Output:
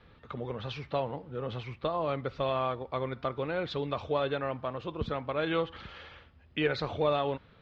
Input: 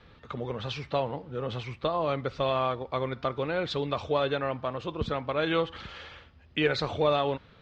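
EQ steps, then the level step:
high-frequency loss of the air 110 metres
−2.5 dB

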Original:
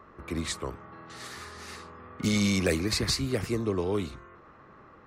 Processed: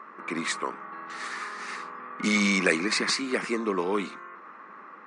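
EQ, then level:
linear-phase brick-wall band-pass 170–10,000 Hz
flat-topped bell 1,500 Hz +8.5 dB
+1.0 dB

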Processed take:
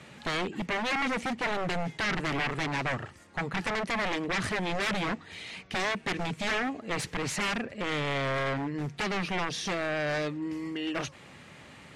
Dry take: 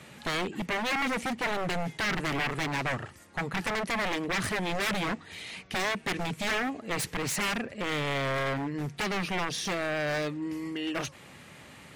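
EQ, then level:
low-pass filter 9,200 Hz 12 dB per octave
high-shelf EQ 7,300 Hz −4 dB
0.0 dB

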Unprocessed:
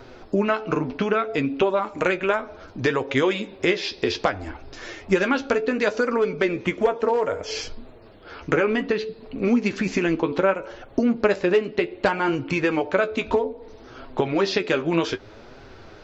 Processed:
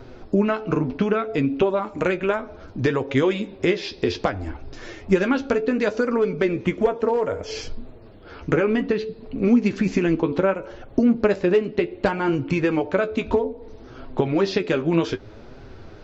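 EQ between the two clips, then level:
low-shelf EQ 390 Hz +9.5 dB
−3.5 dB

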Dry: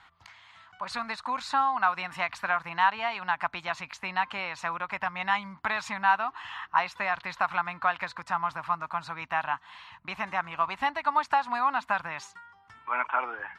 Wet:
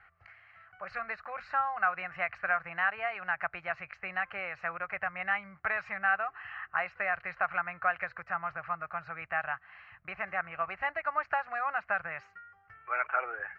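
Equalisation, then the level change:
low-pass filter 3,400 Hz 24 dB per octave
phaser with its sweep stopped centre 960 Hz, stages 6
0.0 dB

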